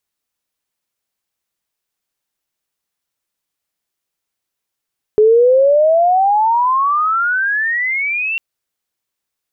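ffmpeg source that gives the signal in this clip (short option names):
-f lavfi -i "aevalsrc='pow(10,(-6-10.5*t/3.2)/20)*sin(2*PI*420*3.2/(32.5*log(2)/12)*(exp(32.5*log(2)/12*t/3.2)-1))':d=3.2:s=44100"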